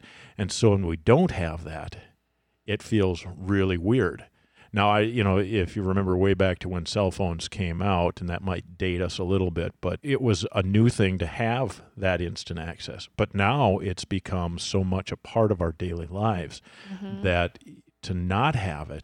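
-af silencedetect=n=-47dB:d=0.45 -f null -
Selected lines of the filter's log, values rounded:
silence_start: 2.06
silence_end: 2.68 | silence_duration: 0.62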